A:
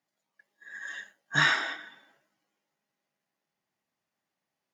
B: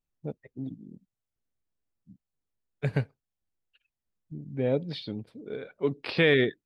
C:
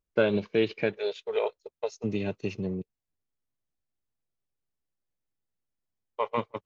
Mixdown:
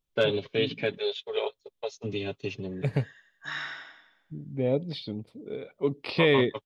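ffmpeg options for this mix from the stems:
ffmpeg -i stem1.wav -i stem2.wav -i stem3.wav -filter_complex "[0:a]lowpass=frequency=5900:width=0.5412,lowpass=frequency=5900:width=1.3066,lowshelf=frequency=340:gain=-9,adelay=2100,volume=-12.5dB,asplit=2[link_01][link_02];[link_02]volume=-3.5dB[link_03];[1:a]equalizer=frequency=1600:width_type=o:width=0.25:gain=-14,volume=0.5dB[link_04];[2:a]equalizer=frequency=3400:width=2.9:gain=12,aecho=1:1:7.3:0.65,asoftclip=type=hard:threshold=-11dB,volume=-3.5dB[link_05];[link_03]aecho=0:1:88|176|264|352|440|528:1|0.41|0.168|0.0689|0.0283|0.0116[link_06];[link_01][link_04][link_05][link_06]amix=inputs=4:normalize=0" out.wav

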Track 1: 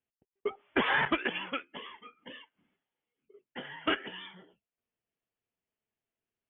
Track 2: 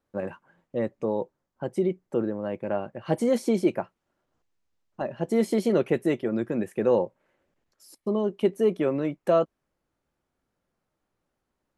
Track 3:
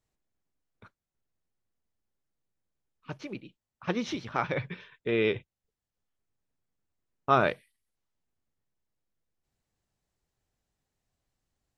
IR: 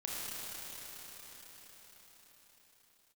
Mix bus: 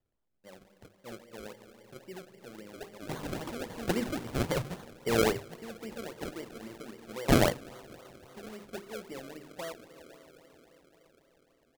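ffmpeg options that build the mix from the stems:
-filter_complex "[0:a]adelay=2350,volume=-12dB,asplit=2[link_01][link_02];[link_02]volume=-12dB[link_03];[1:a]tremolo=f=2.5:d=0.31,adelay=300,volume=-19.5dB,asplit=2[link_04][link_05];[link_05]volume=-6.5dB[link_06];[2:a]volume=0dB,asplit=3[link_07][link_08][link_09];[link_08]volume=-22.5dB[link_10];[link_09]apad=whole_len=390093[link_11];[link_01][link_11]sidechaincompress=threshold=-37dB:ratio=8:attack=30:release=532[link_12];[3:a]atrim=start_sample=2205[link_13];[link_03][link_06][link_10]amix=inputs=3:normalize=0[link_14];[link_14][link_13]afir=irnorm=-1:irlink=0[link_15];[link_12][link_04][link_07][link_15]amix=inputs=4:normalize=0,bandreject=frequency=50:width_type=h:width=6,bandreject=frequency=100:width_type=h:width=6,bandreject=frequency=150:width_type=h:width=6,bandreject=frequency=200:width_type=h:width=6,bandreject=frequency=250:width_type=h:width=6,bandreject=frequency=300:width_type=h:width=6,bandreject=frequency=350:width_type=h:width=6,bandreject=frequency=400:width_type=h:width=6,acrusher=samples=33:mix=1:aa=0.000001:lfo=1:lforange=33:lforate=3.7"

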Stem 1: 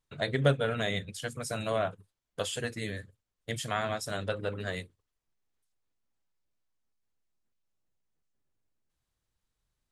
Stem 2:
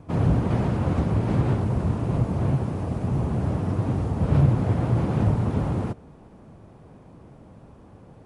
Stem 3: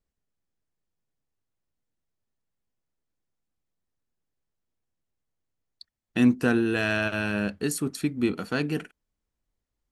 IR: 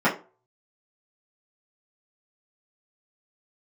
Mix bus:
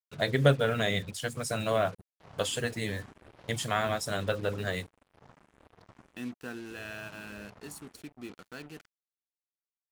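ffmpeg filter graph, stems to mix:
-filter_complex "[0:a]agate=range=-9dB:threshold=-45dB:ratio=16:detection=peak,volume=2.5dB[link_01];[1:a]equalizer=frequency=110:width=0.38:gain=-13.5,asplit=2[link_02][link_03];[link_03]afreqshift=1.7[link_04];[link_02][link_04]amix=inputs=2:normalize=1,adelay=2100,volume=-18dB,asplit=3[link_05][link_06][link_07];[link_05]atrim=end=6.17,asetpts=PTS-STARTPTS,afade=type=out:start_time=6.166:duration=0.004:curve=hsin[link_08];[link_06]atrim=start=6.17:end=6.7,asetpts=PTS-STARTPTS,volume=0[link_09];[link_07]atrim=start=6.7,asetpts=PTS-STARTPTS,afade=type=in:duration=0.004:curve=hsin[link_10];[link_08][link_09][link_10]concat=n=3:v=0:a=1[link_11];[2:a]lowshelf=frequency=490:gain=-6,agate=range=-33dB:threshold=-40dB:ratio=3:detection=peak,volume=-14.5dB[link_12];[link_01][link_11][link_12]amix=inputs=3:normalize=0,acrusher=bits=7:mix=0:aa=0.5"

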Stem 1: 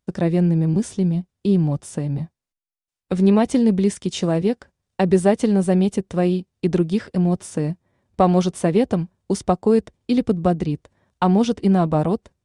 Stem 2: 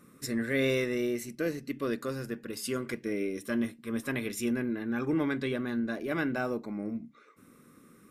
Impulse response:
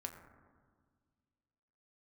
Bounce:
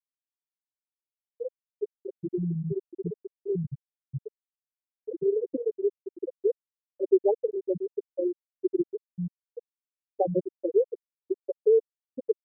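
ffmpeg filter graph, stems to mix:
-filter_complex "[0:a]adelay=2000,volume=-7dB,asplit=2[link_01][link_02];[link_02]volume=-19dB[link_03];[1:a]aemphasis=mode=reproduction:type=cd,acompressor=threshold=-31dB:ratio=8,volume=2dB,asplit=3[link_04][link_05][link_06];[link_05]volume=-4dB[link_07];[link_06]volume=-5.5dB[link_08];[2:a]atrim=start_sample=2205[link_09];[link_03][link_07]amix=inputs=2:normalize=0[link_10];[link_10][link_09]afir=irnorm=-1:irlink=0[link_11];[link_08]aecho=0:1:1014|2028|3042|4056|5070:1|0.39|0.152|0.0593|0.0231[link_12];[link_01][link_04][link_11][link_12]amix=inputs=4:normalize=0,aecho=1:1:2.2:0.73,afftfilt=real='re*gte(hypot(re,im),0.562)':imag='im*gte(hypot(re,im),0.562)':win_size=1024:overlap=0.75"

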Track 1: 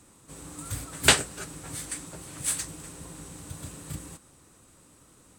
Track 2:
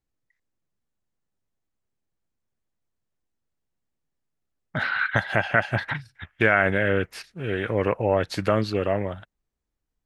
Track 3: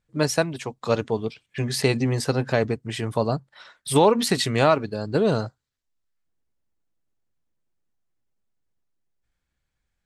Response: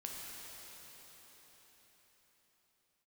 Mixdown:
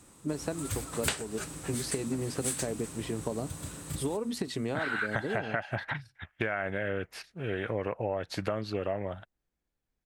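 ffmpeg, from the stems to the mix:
-filter_complex "[0:a]volume=0dB[link_01];[1:a]equalizer=frequency=690:width_type=o:width=0.77:gain=4,volume=-5dB[link_02];[2:a]equalizer=frequency=310:width_type=o:width=2:gain=11,acompressor=threshold=-15dB:ratio=6,adelay=100,volume=-12dB[link_03];[link_01][link_02][link_03]amix=inputs=3:normalize=0,acompressor=threshold=-27dB:ratio=12"

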